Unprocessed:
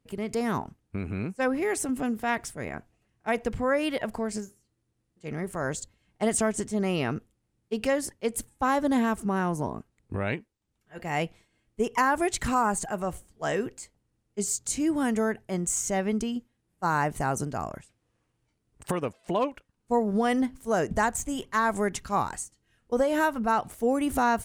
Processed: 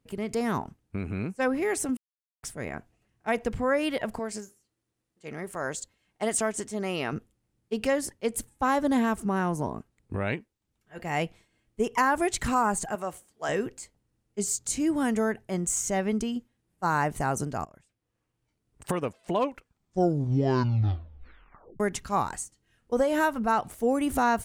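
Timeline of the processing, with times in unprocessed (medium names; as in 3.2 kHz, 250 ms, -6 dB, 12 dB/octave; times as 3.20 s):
1.97–2.43 s: mute
4.19–7.13 s: bass shelf 230 Hz -11 dB
12.95–13.49 s: high-pass 440 Hz 6 dB/octave
17.65–18.90 s: fade in, from -19.5 dB
19.44 s: tape stop 2.36 s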